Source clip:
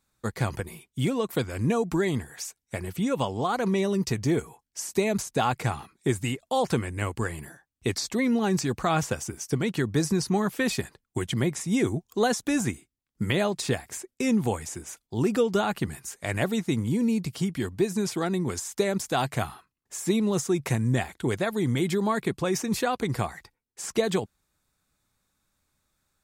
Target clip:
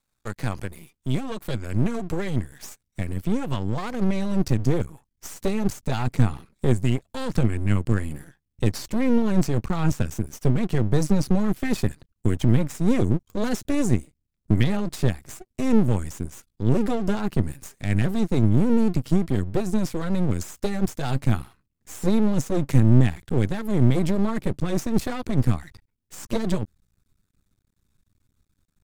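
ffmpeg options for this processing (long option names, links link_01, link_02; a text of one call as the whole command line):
ffmpeg -i in.wav -af "asubboost=boost=6:cutoff=240,atempo=0.91,aeval=exprs='max(val(0),0)':channel_layout=same" out.wav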